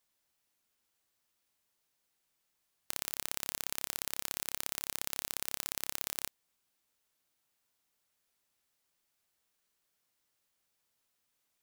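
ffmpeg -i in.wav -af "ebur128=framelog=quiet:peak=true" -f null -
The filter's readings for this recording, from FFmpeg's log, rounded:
Integrated loudness:
  I:         -36.8 LUFS
  Threshold: -46.8 LUFS
Loudness range:
  LRA:         9.4 LU
  Threshold: -59.1 LUFS
  LRA low:   -45.9 LUFS
  LRA high:  -36.4 LUFS
True peak:
  Peak:       -6.4 dBFS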